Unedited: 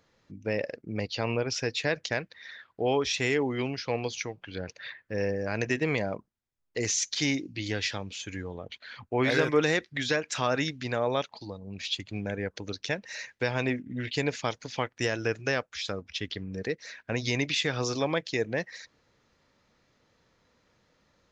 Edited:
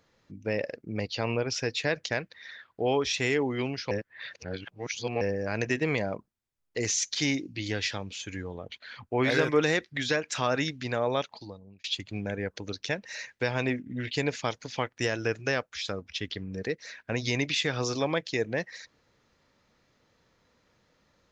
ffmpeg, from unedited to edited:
ffmpeg -i in.wav -filter_complex "[0:a]asplit=4[link_01][link_02][link_03][link_04];[link_01]atrim=end=3.912[link_05];[link_02]atrim=start=3.908:end=5.212,asetpts=PTS-STARTPTS,areverse[link_06];[link_03]atrim=start=5.208:end=11.84,asetpts=PTS-STARTPTS,afade=type=out:start_time=6.132:duration=0.5[link_07];[link_04]atrim=start=11.84,asetpts=PTS-STARTPTS,afade=type=in:duration=0.004:curve=hsin[link_08];[link_05][link_06]acrossfade=duration=0.004:curve1=hsin:curve2=hsin[link_09];[link_07][link_08]concat=n=2:v=0:a=1[link_10];[link_09][link_10]acrossfade=duration=0.004:curve1=hsin:curve2=hsin" out.wav

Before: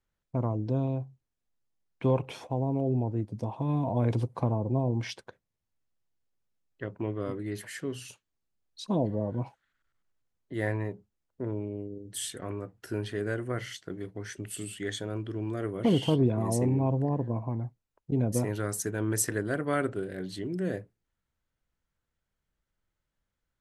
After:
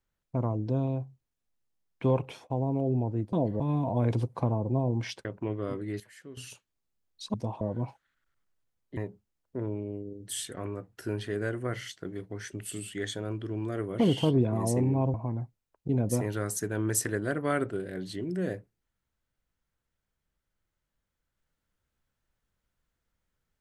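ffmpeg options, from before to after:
ffmpeg -i in.wav -filter_complex "[0:a]asplit=11[link_01][link_02][link_03][link_04][link_05][link_06][link_07][link_08][link_09][link_10][link_11];[link_01]atrim=end=2.5,asetpts=PTS-STARTPTS,afade=type=out:start_time=2.24:duration=0.26:silence=0.158489[link_12];[link_02]atrim=start=2.5:end=3.332,asetpts=PTS-STARTPTS,afade=type=in:duration=0.004:curve=hsin:silence=0.158489[link_13];[link_03]atrim=start=8.918:end=9.192[link_14];[link_04]atrim=start=3.598:end=5.252[link_15];[link_05]atrim=start=6.828:end=7.582[link_16];[link_06]atrim=start=7.578:end=7.952,asetpts=PTS-STARTPTS,volume=-12dB[link_17];[link_07]atrim=start=7.948:end=8.922[link_18];[link_08]atrim=start=3.328:end=3.602[link_19];[link_09]atrim=start=9.188:end=10.552[link_20];[link_10]atrim=start=10.818:end=16.992[link_21];[link_11]atrim=start=17.368[link_22];[link_12][link_13]concat=n=2:v=0:a=1[link_23];[link_23][link_14]acrossfade=duration=0.004:curve1=hsin:curve2=hsin[link_24];[link_24][link_15]acrossfade=duration=0.004:curve1=hsin:curve2=hsin[link_25];[link_25][link_16]acrossfade=duration=0.004:curve1=hsin:curve2=hsin[link_26];[link_26][link_17]acrossfade=duration=0.004:curve1=hsin:curve2=hsin[link_27];[link_27][link_18]acrossfade=duration=0.004:curve1=hsin:curve2=hsin[link_28];[link_28][link_19]acrossfade=duration=0.004:curve1=hsin:curve2=hsin[link_29];[link_29][link_20]acrossfade=duration=0.004:curve1=hsin:curve2=hsin[link_30];[link_30][link_21]acrossfade=duration=0.004:curve1=hsin:curve2=hsin[link_31];[link_31][link_22]acrossfade=duration=0.004:curve1=hsin:curve2=hsin" out.wav

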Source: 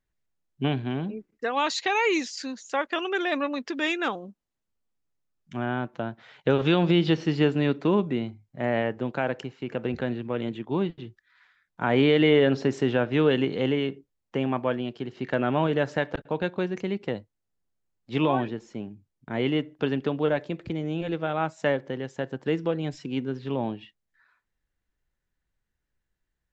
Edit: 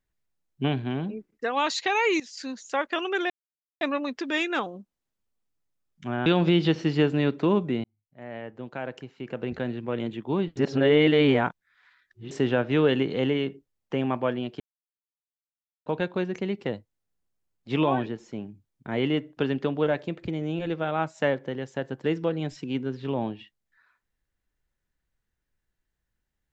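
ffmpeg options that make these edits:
ffmpeg -i in.wav -filter_complex "[0:a]asplit=9[link_01][link_02][link_03][link_04][link_05][link_06][link_07][link_08][link_09];[link_01]atrim=end=2.2,asetpts=PTS-STARTPTS,afade=type=out:start_time=2.196:duration=0.004:curve=hsin:silence=0.158489[link_10];[link_02]atrim=start=2.2:end=3.3,asetpts=PTS-STARTPTS,afade=type=in:duration=0.3:silence=0.158489,afade=type=out:start_time=1.096:duration=0.004:curve=hsin,apad=pad_dur=0.51[link_11];[link_03]atrim=start=3.3:end=5.752,asetpts=PTS-STARTPTS,afade=type=in:duration=0.004:curve=hsin[link_12];[link_04]atrim=start=6.678:end=8.26,asetpts=PTS-STARTPTS,afade=type=out:start_time=1.578:duration=0.004:curve=hsin[link_13];[link_05]atrim=start=8.26:end=10.992,asetpts=PTS-STARTPTS,afade=type=in:duration=2.15[link_14];[link_06]atrim=start=10.988:end=12.732,asetpts=PTS-STARTPTS,areverse[link_15];[link_07]atrim=start=12.728:end=15.02,asetpts=PTS-STARTPTS,afade=type=out:start_time=2.288:duration=0.004:curve=hsin[link_16];[link_08]atrim=start=15.02:end=16.28,asetpts=PTS-STARTPTS,volume=0[link_17];[link_09]atrim=start=16.28,asetpts=PTS-STARTPTS,afade=type=in:duration=0.004:curve=hsin[link_18];[link_10][link_11][link_12]concat=n=3:v=0:a=1[link_19];[link_13][link_14]concat=n=2:v=0:a=1[link_20];[link_19][link_20]acrossfade=duration=0.004:curve1=hsin:curve2=hsin[link_21];[link_21][link_15]acrossfade=duration=0.004:curve1=hsin:curve2=hsin[link_22];[link_16][link_17][link_18]concat=n=3:v=0:a=1[link_23];[link_22][link_23]acrossfade=duration=0.004:curve1=hsin:curve2=hsin" out.wav

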